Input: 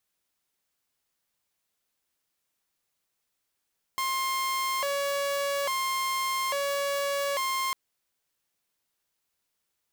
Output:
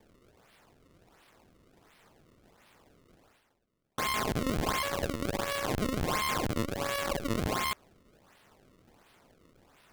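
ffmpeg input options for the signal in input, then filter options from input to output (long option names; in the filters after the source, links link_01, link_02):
-f lavfi -i "aevalsrc='0.0631*(2*mod((811.5*t+248.5/0.59*(0.5-abs(mod(0.59*t,1)-0.5))),1)-1)':duration=3.75:sample_rate=44100"
-af "highpass=frequency=1100:poles=1,areverse,acompressor=mode=upward:threshold=-45dB:ratio=2.5,areverse,acrusher=samples=31:mix=1:aa=0.000001:lfo=1:lforange=49.6:lforate=1.4"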